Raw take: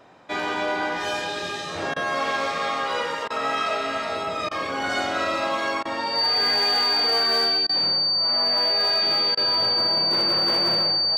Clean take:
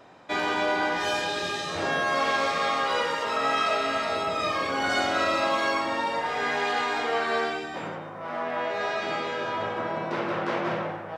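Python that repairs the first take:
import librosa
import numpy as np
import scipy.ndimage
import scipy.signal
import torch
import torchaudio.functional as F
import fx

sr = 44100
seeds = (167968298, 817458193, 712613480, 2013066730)

y = fx.fix_declip(x, sr, threshold_db=-15.5)
y = fx.notch(y, sr, hz=4600.0, q=30.0)
y = fx.fix_interpolate(y, sr, at_s=(1.94, 3.28, 4.49, 5.83, 7.67, 9.35), length_ms=21.0)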